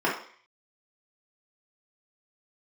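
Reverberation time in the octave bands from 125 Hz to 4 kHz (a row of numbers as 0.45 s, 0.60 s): 0.35 s, 0.45 s, 0.45 s, 0.55 s, 0.60 s, 0.55 s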